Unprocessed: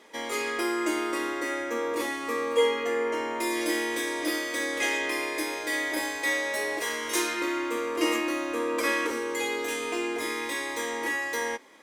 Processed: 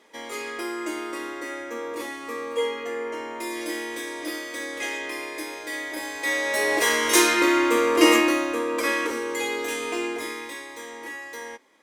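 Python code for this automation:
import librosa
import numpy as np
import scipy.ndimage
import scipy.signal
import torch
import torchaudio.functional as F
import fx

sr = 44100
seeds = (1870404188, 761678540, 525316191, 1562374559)

y = fx.gain(x, sr, db=fx.line((5.99, -3.0), (6.83, 9.5), (8.19, 9.5), (8.64, 2.0), (10.05, 2.0), (10.68, -7.0)))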